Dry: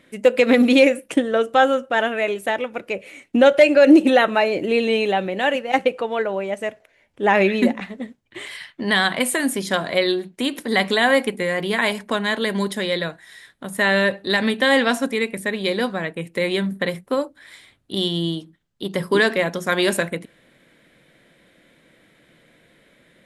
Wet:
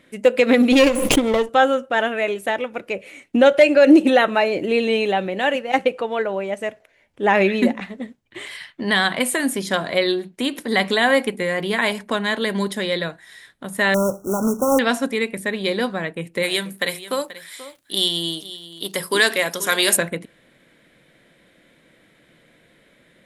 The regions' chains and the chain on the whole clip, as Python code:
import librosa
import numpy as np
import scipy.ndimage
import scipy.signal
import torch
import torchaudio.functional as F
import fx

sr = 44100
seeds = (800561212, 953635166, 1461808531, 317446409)

y = fx.chain(x, sr, fx.lower_of_two(delay_ms=0.3),
    fx.pre_swell(db_per_s=39.0), at=(0.72, 1.49))
y = fx.chain(y, sr, fx.low_shelf(hz=90.0, db=8.5),
    fx.quant_companded(bits=4),
    fx.brickwall_bandstop(low_hz=1500.0, high_hz=5400.0), at=(13.94, 14.79))
y = fx.riaa(y, sr, side='recording', at=(16.42, 19.95), fade=0.02)
y = fx.echo_single(y, sr, ms=483, db=-15.5, at=(16.42, 19.95), fade=0.02)
y = fx.dmg_crackle(y, sr, seeds[0], per_s=75.0, level_db=-42.0, at=(16.42, 19.95), fade=0.02)